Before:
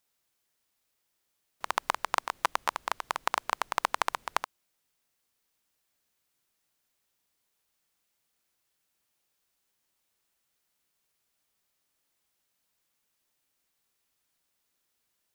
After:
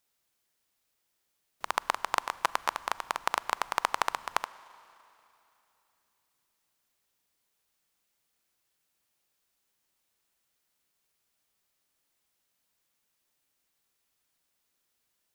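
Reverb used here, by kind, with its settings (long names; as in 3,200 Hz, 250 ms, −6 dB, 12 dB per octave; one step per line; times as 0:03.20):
four-comb reverb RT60 3.1 s, combs from 33 ms, DRR 18.5 dB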